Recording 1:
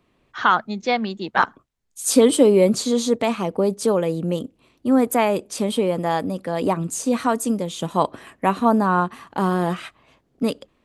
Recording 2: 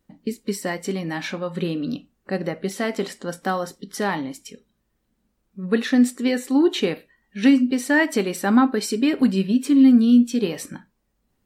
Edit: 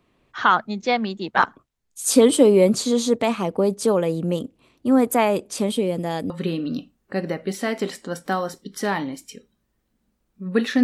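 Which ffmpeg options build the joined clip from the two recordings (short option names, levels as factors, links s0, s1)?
-filter_complex "[0:a]asettb=1/sr,asplit=3[s0][s1][s2];[s0]atrim=end=5.724[s3];[s1]atrim=start=5.72:end=6.3,asetpts=PTS-STARTPTS,afade=t=in:d=0.004:c=qsin,afade=t=out:st=0.576:d=0.004:c=qsin,equalizer=f=1100:w=0.97:g=-10[s4];[s2]atrim=start=6.296[s5];[s3][s4]acrossfade=d=0.004:c1=hsin:c2=qsin[s6];[s6][s5]acrossfade=d=0.004:c1=qsin:c2=hsin,apad=whole_dur=10.83,atrim=end=10.83,atrim=end=6.302[s7];[1:a]atrim=start=1.468:end=6[s8];[s7][s8]acrossfade=d=0.004:c1=hsin:c2=hsin"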